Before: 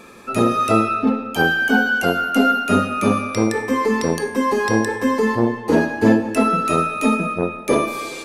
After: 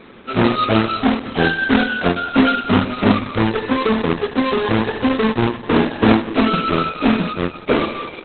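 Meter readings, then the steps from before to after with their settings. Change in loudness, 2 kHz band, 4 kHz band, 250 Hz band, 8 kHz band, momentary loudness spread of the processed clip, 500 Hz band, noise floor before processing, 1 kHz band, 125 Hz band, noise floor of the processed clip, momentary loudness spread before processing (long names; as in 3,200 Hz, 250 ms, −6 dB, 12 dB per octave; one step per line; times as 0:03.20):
+1.0 dB, −1.0 dB, +5.5 dB, +2.0 dB, below −40 dB, 4 LU, 0.0 dB, −32 dBFS, −0.5 dB, +4.0 dB, −36 dBFS, 4 LU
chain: each half-wave held at its own peak
level −1.5 dB
Opus 8 kbit/s 48,000 Hz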